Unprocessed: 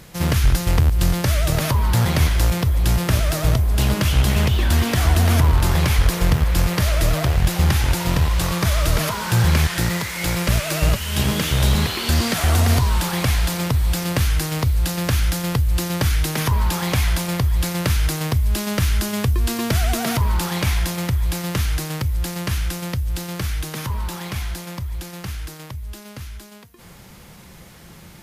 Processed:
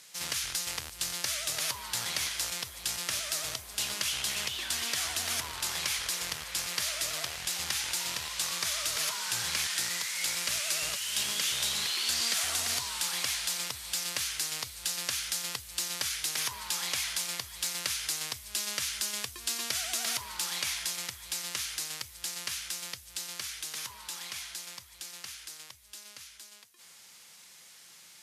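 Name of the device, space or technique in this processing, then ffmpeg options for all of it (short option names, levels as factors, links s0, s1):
piezo pickup straight into a mixer: -af "lowpass=7500,aderivative,volume=1.26"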